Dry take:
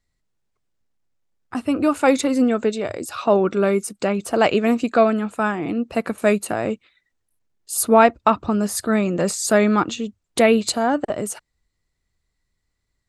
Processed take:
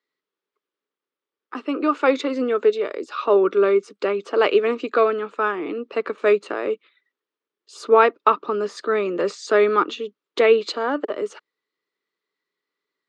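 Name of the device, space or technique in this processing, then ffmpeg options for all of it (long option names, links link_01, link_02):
television speaker: -filter_complex "[0:a]highpass=frequency=200:width=0.5412,highpass=frequency=200:width=1.3066,equalizer=frequency=220:width_type=q:width=4:gain=-10,equalizer=frequency=420:width_type=q:width=4:gain=8,equalizer=frequency=720:width_type=q:width=4:gain=-9,equalizer=frequency=1200:width_type=q:width=4:gain=6,equalizer=frequency=3300:width_type=q:width=4:gain=3,lowpass=frequency=7000:width=0.5412,lowpass=frequency=7000:width=1.3066,acrossover=split=180 4900:gain=0.0794 1 0.126[link_01][link_02][link_03];[link_01][link_02][link_03]amix=inputs=3:normalize=0,volume=-1.5dB"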